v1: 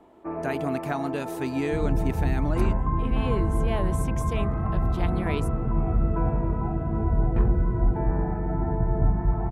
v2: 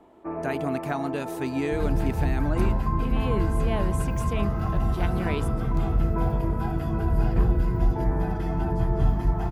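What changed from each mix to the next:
second sound: remove Butterworth low-pass 790 Hz 96 dB per octave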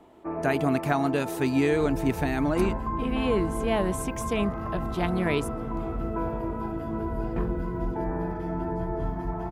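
speech +4.5 dB
second sound −10.5 dB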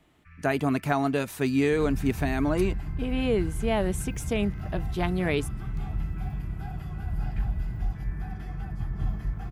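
first sound: add inverse Chebyshev band-stop filter 240–890 Hz, stop band 50 dB
second sound +3.5 dB

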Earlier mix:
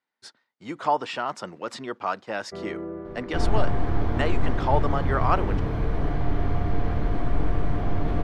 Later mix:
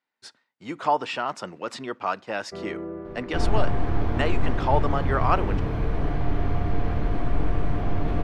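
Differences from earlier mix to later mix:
speech: send on
master: add parametric band 2,600 Hz +3.5 dB 0.25 octaves

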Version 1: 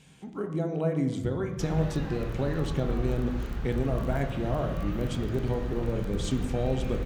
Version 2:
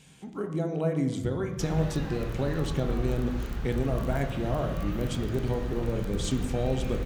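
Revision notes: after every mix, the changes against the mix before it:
master: add high-shelf EQ 4,200 Hz +5 dB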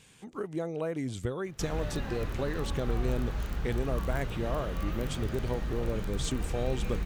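reverb: off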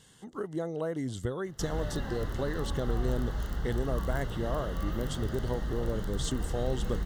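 master: add Butterworth band-reject 2,400 Hz, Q 3.6

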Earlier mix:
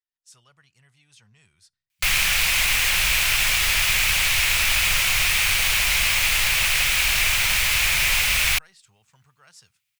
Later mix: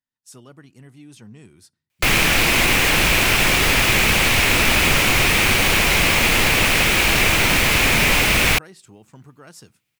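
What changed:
speech: remove high-frequency loss of the air 53 metres
master: remove guitar amp tone stack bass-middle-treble 10-0-10

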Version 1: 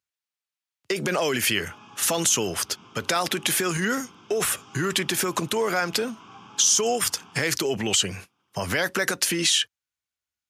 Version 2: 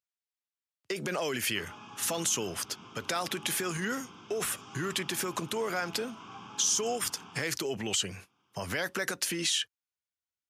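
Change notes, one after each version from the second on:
speech −8.0 dB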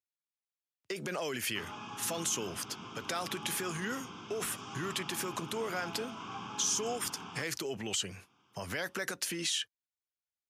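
speech −4.0 dB
background +4.0 dB

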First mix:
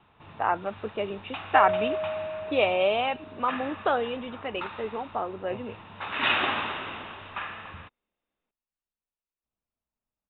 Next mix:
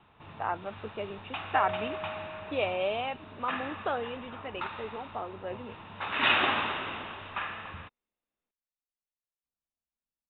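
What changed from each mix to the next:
speech −6.5 dB
second sound −9.5 dB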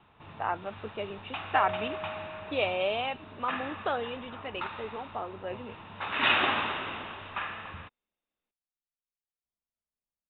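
speech: remove high-frequency loss of the air 200 metres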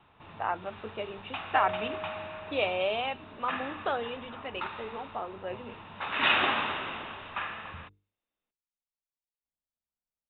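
master: add mains-hum notches 50/100/150/200/250/300/350/400/450 Hz

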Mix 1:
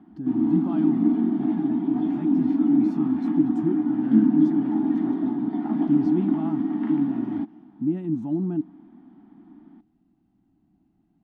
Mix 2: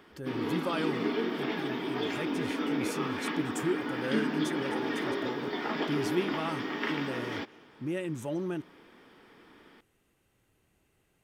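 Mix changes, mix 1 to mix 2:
background: remove low-pass filter 3,000 Hz 12 dB per octave
master: remove drawn EQ curve 120 Hz 0 dB, 200 Hz +14 dB, 310 Hz +13 dB, 490 Hz −25 dB, 720 Hz +4 dB, 1,100 Hz −8 dB, 2,400 Hz −18 dB, 4,300 Hz −14 dB, 8,700 Hz −29 dB

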